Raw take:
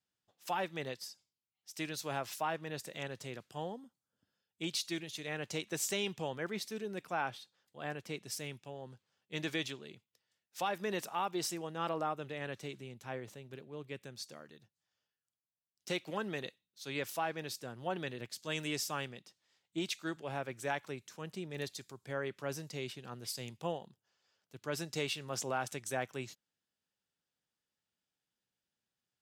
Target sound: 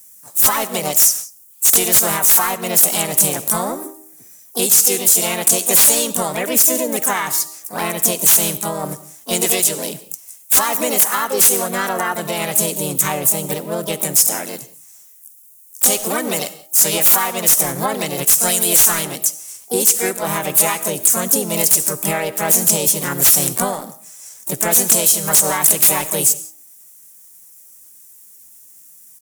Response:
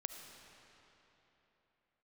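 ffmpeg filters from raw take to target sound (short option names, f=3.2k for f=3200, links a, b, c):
-filter_complex "[0:a]bandreject=f=272.1:t=h:w=4,bandreject=f=544.2:t=h:w=4,bandreject=f=816.3:t=h:w=4,acompressor=threshold=-45dB:ratio=4,asetrate=50951,aresample=44100,atempo=0.865537,aexciter=amount=7.9:drive=9.6:freq=6.2k,aeval=exprs='0.299*sin(PI/2*3.98*val(0)/0.299)':c=same,asplit=4[a][b][c][d];[b]asetrate=37084,aresample=44100,atempo=1.18921,volume=-16dB[e];[c]asetrate=55563,aresample=44100,atempo=0.793701,volume=-1dB[f];[d]asetrate=88200,aresample=44100,atempo=0.5,volume=-13dB[g];[a][e][f][g]amix=inputs=4:normalize=0,asplit=2[h][i];[1:a]atrim=start_sample=2205,afade=t=out:st=0.24:d=0.01,atrim=end_sample=11025[j];[i][j]afir=irnorm=-1:irlink=0,volume=1dB[k];[h][k]amix=inputs=2:normalize=0,alimiter=level_in=3.5dB:limit=-1dB:release=50:level=0:latency=1,volume=-1dB"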